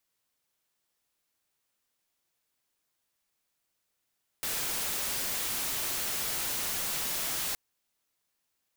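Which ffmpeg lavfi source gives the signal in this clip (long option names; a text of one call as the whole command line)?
ffmpeg -f lavfi -i "anoisesrc=color=white:amplitude=0.0411:duration=3.12:sample_rate=44100:seed=1" out.wav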